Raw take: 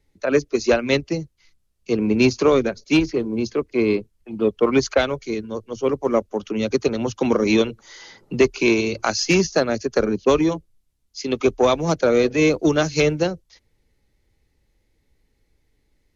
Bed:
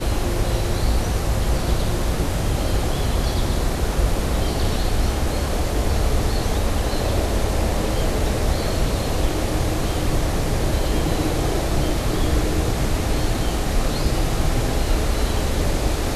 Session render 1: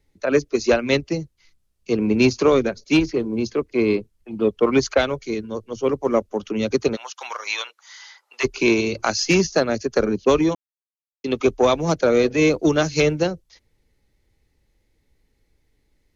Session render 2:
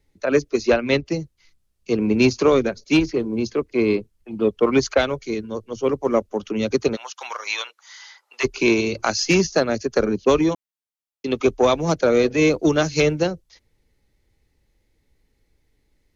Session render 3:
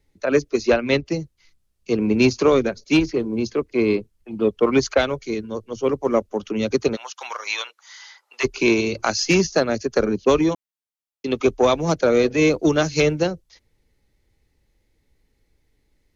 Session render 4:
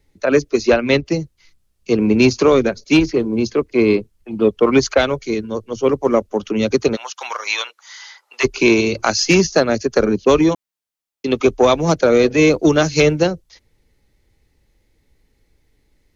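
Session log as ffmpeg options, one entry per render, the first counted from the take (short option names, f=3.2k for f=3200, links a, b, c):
-filter_complex "[0:a]asplit=3[a][b][c];[a]afade=t=out:st=6.95:d=0.02[d];[b]highpass=f=890:w=0.5412,highpass=f=890:w=1.3066,afade=t=in:st=6.95:d=0.02,afade=t=out:st=8.43:d=0.02[e];[c]afade=t=in:st=8.43:d=0.02[f];[d][e][f]amix=inputs=3:normalize=0,asplit=3[g][h][i];[g]atrim=end=10.55,asetpts=PTS-STARTPTS,afade=t=out:st=10.546:d=0.004:c=hsin[j];[h]atrim=start=10.55:end=11.24,asetpts=PTS-STARTPTS,volume=0[k];[i]atrim=start=11.24,asetpts=PTS-STARTPTS,afade=t=in:d=0.004:c=hsin[l];[j][k][l]concat=n=3:v=0:a=1"
-filter_complex "[0:a]asettb=1/sr,asplit=3[a][b][c];[a]atrim=end=0.614[d];[b]atrim=start=0.61:end=1.06,asetpts=PTS-STARTPTS,afade=t=in:d=0.004:c=qsin,afade=t=out:st=0.446:d=0.004:c=qsin,lowpass=4.8k[e];[c]atrim=start=1.056[f];[d][e]acrossfade=d=0.004:c1=hsin:c2=qsin[g];[g][f]acrossfade=d=0.004:c1=qsin:c2=hsin"
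-af anull
-af "volume=5dB,alimiter=limit=-3dB:level=0:latency=1"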